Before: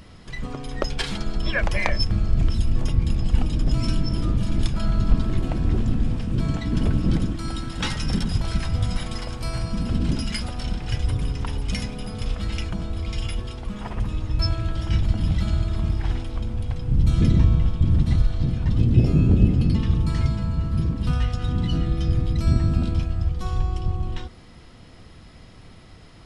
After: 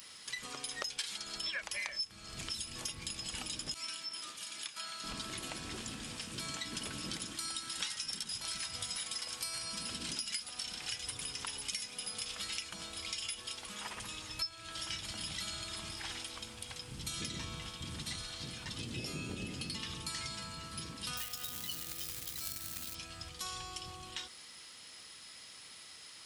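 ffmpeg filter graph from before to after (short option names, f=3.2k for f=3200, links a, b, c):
-filter_complex "[0:a]asettb=1/sr,asplit=3[a][b][c];[a]atrim=end=3.744[d];[b]atrim=start=3.74:end=5.04,asetpts=PTS-STARTPTS,afade=t=in:d=0.004:c=qsin,afade=t=out:st=1.296:d=0.004:c=qsin,highpass=f=1.3k:p=1,acrossover=split=2800[e][f];[f]acompressor=threshold=-46dB:ratio=4:attack=1:release=60[g];[e][g]amix=inputs=2:normalize=0,agate=range=-33dB:threshold=-40dB:ratio=3:release=100:detection=peak[h];[c]atrim=start=5.036[i];[d][h]acrossfade=d=0.004:c1=hsin:c2=qsin[j];[j][i]acrossfade=d=0.004:c1=qsin:c2=hsin,asettb=1/sr,asplit=3[k][l][m];[k]atrim=end=21.174[n];[l]atrim=start=21.17:end=22.95,asetpts=PTS-STARTPTS,afade=t=in:d=0.004:c=qsin,afade=t=out:st=1.776:d=0.004:c=qsin,asubboost=boost=2.5:cutoff=130,acrusher=bits=6:mode=log:mix=0:aa=0.000001[o];[m]atrim=start=22.946[p];[n][o]acrossfade=d=0.004:c1=hsin:c2=qsin[q];[q][p]acrossfade=d=0.004:c1=qsin:c2=hsin,aderivative,bandreject=f=700:w=12,acompressor=threshold=-46dB:ratio=6,volume=9.5dB"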